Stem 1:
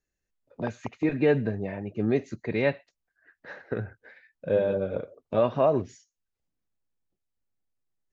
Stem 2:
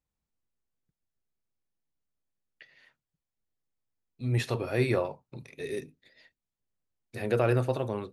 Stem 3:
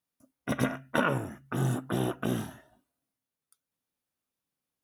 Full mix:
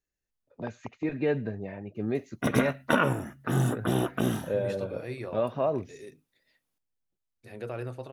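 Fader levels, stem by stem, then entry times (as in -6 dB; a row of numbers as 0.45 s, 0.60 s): -5.0 dB, -11.0 dB, +3.0 dB; 0.00 s, 0.30 s, 1.95 s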